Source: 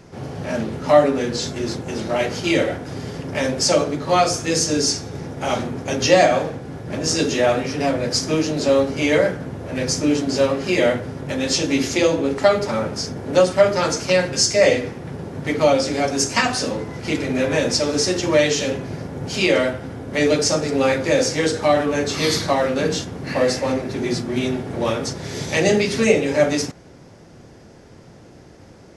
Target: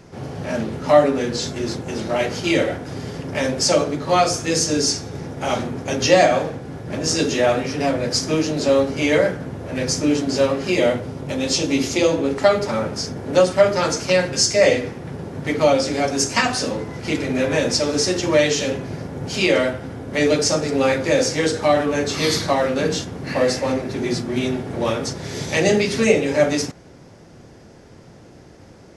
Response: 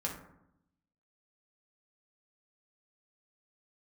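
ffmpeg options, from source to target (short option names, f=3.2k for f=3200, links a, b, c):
-filter_complex "[0:a]asettb=1/sr,asplit=3[a][b][c];[a]atrim=end=10.724[d];[b]atrim=start=10.72:end=12.08,asetpts=PTS-STARTPTS,afade=t=in:d=0.004:c=qsin,afade=t=out:st=1.356:d=0.004:c=qsin,equalizer=f=1.7k:w=3.2:g=-6[e];[c]atrim=start=12.076[f];[d][e]acrossfade=d=0.004:c1=hsin:c2=qsin[g];[g][f]acrossfade=d=0.004:c1=qsin:c2=hsin"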